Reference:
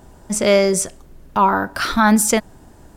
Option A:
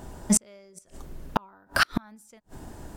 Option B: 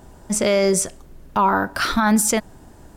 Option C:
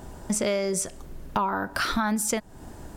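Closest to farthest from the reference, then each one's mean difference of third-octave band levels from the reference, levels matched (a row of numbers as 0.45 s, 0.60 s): B, C, A; 2.0 dB, 6.5 dB, 15.0 dB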